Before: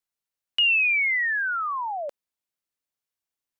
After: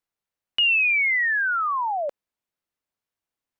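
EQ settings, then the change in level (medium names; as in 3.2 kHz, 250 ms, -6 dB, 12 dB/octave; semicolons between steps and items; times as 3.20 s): treble shelf 3 kHz -9.5 dB; +5.0 dB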